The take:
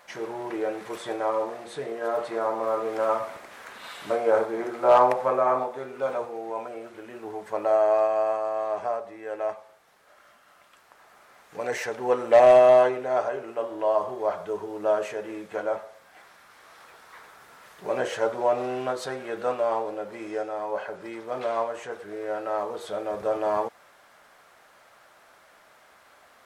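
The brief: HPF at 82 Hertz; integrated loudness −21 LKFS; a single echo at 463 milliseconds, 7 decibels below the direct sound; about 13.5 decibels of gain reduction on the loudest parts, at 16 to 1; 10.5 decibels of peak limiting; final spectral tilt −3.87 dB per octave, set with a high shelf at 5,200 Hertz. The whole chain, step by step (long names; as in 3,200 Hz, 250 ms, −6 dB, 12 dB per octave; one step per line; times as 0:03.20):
high-pass filter 82 Hz
high-shelf EQ 5,200 Hz +4 dB
downward compressor 16 to 1, threshold −25 dBFS
brickwall limiter −25.5 dBFS
single-tap delay 463 ms −7 dB
level +13.5 dB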